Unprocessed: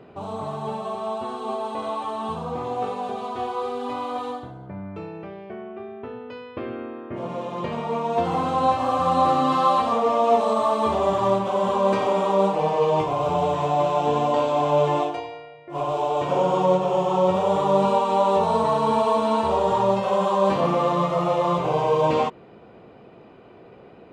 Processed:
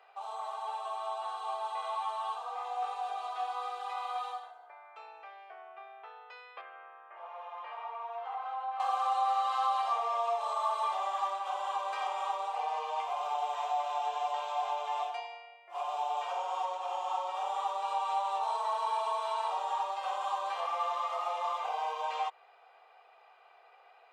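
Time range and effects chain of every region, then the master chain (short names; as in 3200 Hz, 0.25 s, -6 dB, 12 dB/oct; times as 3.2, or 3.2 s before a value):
6.61–8.8 LPF 1900 Hz + low shelf 480 Hz -10 dB + compressor 4:1, threshold -28 dBFS
whole clip: compressor 2.5:1, threshold -22 dBFS; steep high-pass 670 Hz 36 dB/oct; comb 2.5 ms, depth 47%; gain -6 dB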